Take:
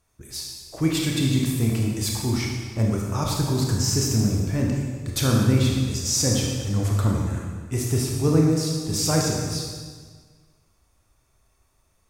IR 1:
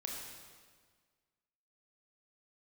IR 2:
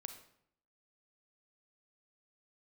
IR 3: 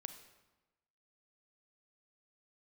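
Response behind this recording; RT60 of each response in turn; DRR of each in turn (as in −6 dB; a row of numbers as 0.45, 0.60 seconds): 1; 1.6, 0.70, 1.1 seconds; −1.5, 7.0, 8.5 decibels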